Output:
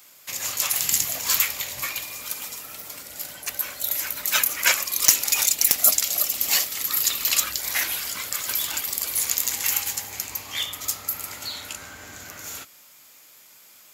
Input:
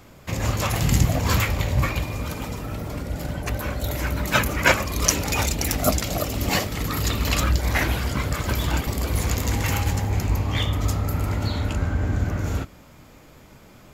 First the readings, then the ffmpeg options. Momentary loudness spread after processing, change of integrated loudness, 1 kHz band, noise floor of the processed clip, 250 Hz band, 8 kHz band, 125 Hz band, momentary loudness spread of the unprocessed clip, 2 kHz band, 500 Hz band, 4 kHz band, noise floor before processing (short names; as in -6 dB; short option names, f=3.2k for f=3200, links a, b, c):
17 LU, +2.0 dB, -8.0 dB, -51 dBFS, -20.0 dB, +7.5 dB, -28.0 dB, 9 LU, -2.5 dB, -13.5 dB, +3.0 dB, -48 dBFS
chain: -af "aderivative,aeval=exprs='0.335*(abs(mod(val(0)/0.335+3,4)-2)-1)':c=same,volume=8.5dB"